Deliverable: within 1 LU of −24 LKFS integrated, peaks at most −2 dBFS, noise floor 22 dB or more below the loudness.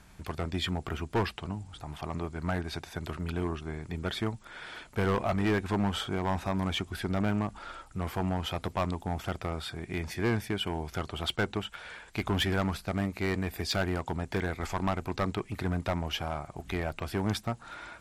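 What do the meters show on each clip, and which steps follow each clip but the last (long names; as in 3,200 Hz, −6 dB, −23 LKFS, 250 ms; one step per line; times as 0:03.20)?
share of clipped samples 1.4%; peaks flattened at −22.5 dBFS; integrated loudness −33.0 LKFS; sample peak −22.5 dBFS; target loudness −24.0 LKFS
→ clipped peaks rebuilt −22.5 dBFS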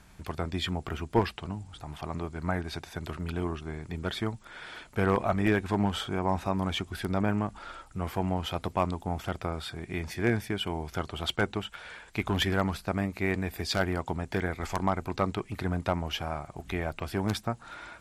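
share of clipped samples 0.0%; integrated loudness −31.5 LKFS; sample peak −13.5 dBFS; target loudness −24.0 LKFS
→ level +7.5 dB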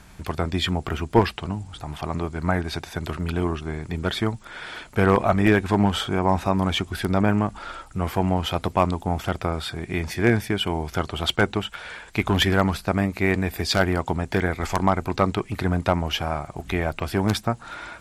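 integrated loudness −24.0 LKFS; sample peak −6.0 dBFS; background noise floor −47 dBFS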